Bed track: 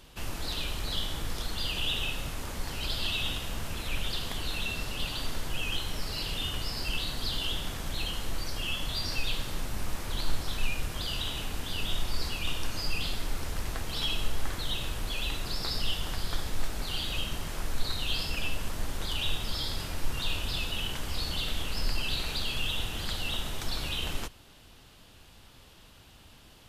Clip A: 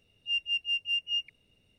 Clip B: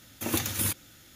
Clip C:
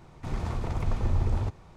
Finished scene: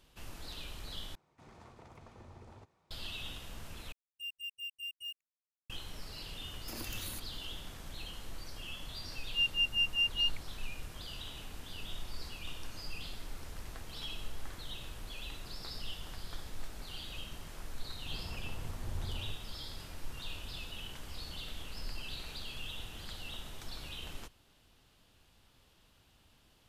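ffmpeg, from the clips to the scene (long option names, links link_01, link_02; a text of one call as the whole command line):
ffmpeg -i bed.wav -i cue0.wav -i cue1.wav -i cue2.wav -filter_complex "[3:a]asplit=2[link_01][link_02];[1:a]asplit=2[link_03][link_04];[0:a]volume=-11.5dB[link_05];[link_01]highpass=frequency=310:poles=1[link_06];[link_03]acrusher=bits=5:mix=0:aa=0.5[link_07];[2:a]acompressor=threshold=-31dB:ratio=6:attack=3.2:release=140:knee=1:detection=peak[link_08];[link_05]asplit=3[link_09][link_10][link_11];[link_09]atrim=end=1.154[link_12];[link_06]atrim=end=1.76,asetpts=PTS-STARTPTS,volume=-17dB[link_13];[link_10]atrim=start=2.906:end=3.924[link_14];[link_07]atrim=end=1.78,asetpts=PTS-STARTPTS,volume=-13dB[link_15];[link_11]atrim=start=5.696[link_16];[link_08]atrim=end=1.15,asetpts=PTS-STARTPTS,volume=-9dB,afade=type=in:duration=0.004:curve=hsin,afade=type=out:start_time=1.146:duration=0.004:curve=hsin,adelay=6470[link_17];[link_04]atrim=end=1.78,asetpts=PTS-STARTPTS,volume=-0.5dB,afade=type=in:duration=0.004:curve=hsin,afade=type=out:start_time=1.776:duration=0.004:curve=hsin,adelay=9080[link_18];[link_02]atrim=end=1.76,asetpts=PTS-STARTPTS,volume=-14.5dB,afade=type=in:duration=0.004:curve=hsin,afade=type=out:start_time=1.756:duration=0.004:curve=hsin,adelay=17820[link_19];[link_12][link_13]acrossfade=duration=0.004:curve1=hsin:curve2=hsin[link_20];[link_20][link_14]acrossfade=duration=0.004:curve1=hsin:curve2=hsin[link_21];[link_21][link_15]acrossfade=duration=0.004:curve1=hsin:curve2=hsin[link_22];[link_22][link_16]acrossfade=duration=0.004:curve1=hsin:curve2=hsin[link_23];[link_23][link_17][link_18][link_19]amix=inputs=4:normalize=0" out.wav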